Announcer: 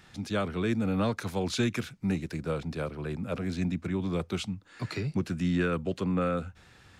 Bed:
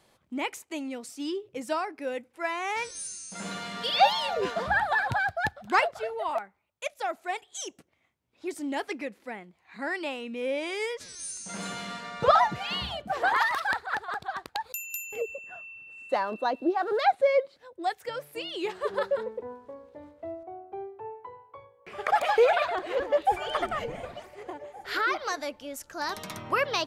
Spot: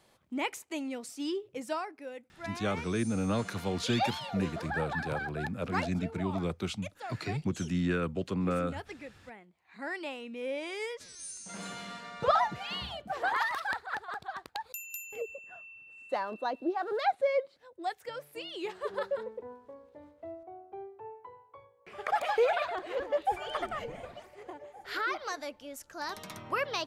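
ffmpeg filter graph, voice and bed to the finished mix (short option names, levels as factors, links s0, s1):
-filter_complex "[0:a]adelay=2300,volume=0.75[s0];[1:a]volume=1.5,afade=t=out:st=1.4:d=0.7:silence=0.354813,afade=t=in:st=9.35:d=0.54:silence=0.562341[s1];[s0][s1]amix=inputs=2:normalize=0"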